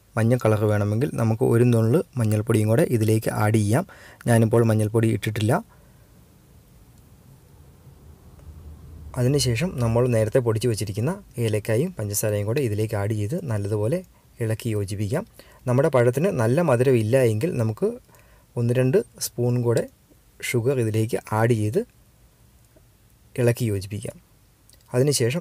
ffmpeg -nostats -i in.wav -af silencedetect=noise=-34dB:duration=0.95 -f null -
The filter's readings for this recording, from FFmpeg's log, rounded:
silence_start: 5.61
silence_end: 8.48 | silence_duration: 2.87
silence_start: 21.84
silence_end: 23.36 | silence_duration: 1.52